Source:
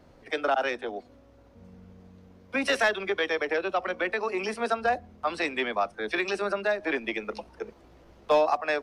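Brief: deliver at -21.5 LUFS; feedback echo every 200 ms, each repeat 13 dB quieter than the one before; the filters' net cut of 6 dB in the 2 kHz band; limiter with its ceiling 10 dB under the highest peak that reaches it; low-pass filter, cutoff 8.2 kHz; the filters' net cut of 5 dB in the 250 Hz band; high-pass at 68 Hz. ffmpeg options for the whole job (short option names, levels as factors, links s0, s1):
-af "highpass=68,lowpass=8200,equalizer=f=250:t=o:g=-7,equalizer=f=2000:t=o:g=-7.5,alimiter=level_in=1.06:limit=0.0631:level=0:latency=1,volume=0.944,aecho=1:1:200|400|600:0.224|0.0493|0.0108,volume=5.01"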